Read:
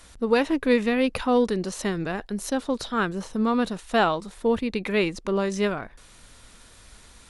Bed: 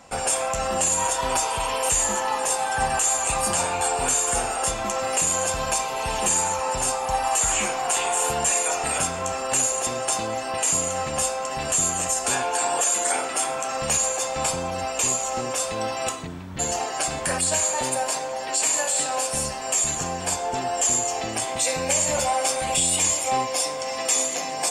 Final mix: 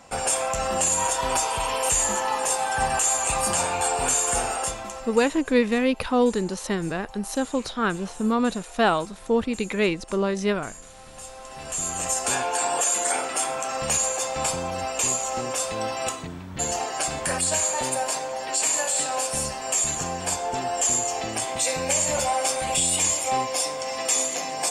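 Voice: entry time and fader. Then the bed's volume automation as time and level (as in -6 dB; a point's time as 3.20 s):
4.85 s, +0.5 dB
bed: 4.54 s -0.5 dB
5.42 s -21.5 dB
10.96 s -21.5 dB
12.12 s -1 dB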